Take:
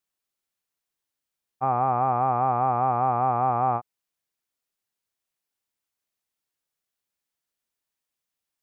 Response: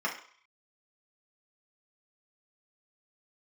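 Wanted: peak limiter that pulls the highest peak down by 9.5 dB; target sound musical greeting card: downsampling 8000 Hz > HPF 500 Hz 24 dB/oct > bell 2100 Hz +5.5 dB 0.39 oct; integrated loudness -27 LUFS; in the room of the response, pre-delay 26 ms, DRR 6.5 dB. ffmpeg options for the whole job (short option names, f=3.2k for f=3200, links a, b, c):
-filter_complex "[0:a]alimiter=limit=-22dB:level=0:latency=1,asplit=2[a][b];[1:a]atrim=start_sample=2205,adelay=26[c];[b][c]afir=irnorm=-1:irlink=0,volume=-15dB[d];[a][d]amix=inputs=2:normalize=0,aresample=8000,aresample=44100,highpass=f=500:w=0.5412,highpass=f=500:w=1.3066,equalizer=f=2.1k:t=o:w=0.39:g=5.5,volume=4.5dB"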